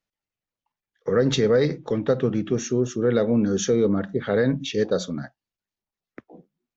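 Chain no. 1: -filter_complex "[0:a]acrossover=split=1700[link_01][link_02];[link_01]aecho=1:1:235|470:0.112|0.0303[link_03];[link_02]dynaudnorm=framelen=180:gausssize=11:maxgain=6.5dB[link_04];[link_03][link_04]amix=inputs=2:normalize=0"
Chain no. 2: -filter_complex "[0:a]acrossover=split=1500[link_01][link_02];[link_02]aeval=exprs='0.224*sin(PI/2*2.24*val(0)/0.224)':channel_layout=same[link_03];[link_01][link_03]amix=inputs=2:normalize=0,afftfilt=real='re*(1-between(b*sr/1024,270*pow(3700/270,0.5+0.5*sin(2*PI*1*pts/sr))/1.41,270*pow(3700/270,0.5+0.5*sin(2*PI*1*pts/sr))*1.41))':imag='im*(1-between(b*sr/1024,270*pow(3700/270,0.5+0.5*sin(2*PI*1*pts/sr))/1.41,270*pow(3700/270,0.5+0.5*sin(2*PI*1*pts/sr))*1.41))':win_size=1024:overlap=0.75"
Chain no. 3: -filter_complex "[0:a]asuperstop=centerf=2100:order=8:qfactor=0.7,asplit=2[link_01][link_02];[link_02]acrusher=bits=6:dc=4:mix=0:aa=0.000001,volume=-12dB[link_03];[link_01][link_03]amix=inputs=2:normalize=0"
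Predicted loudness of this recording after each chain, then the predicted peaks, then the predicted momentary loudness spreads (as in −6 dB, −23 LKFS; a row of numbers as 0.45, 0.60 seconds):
−22.0, −22.5, −21.0 LKFS; −7.0, −8.0, −7.0 dBFS; 7, 7, 7 LU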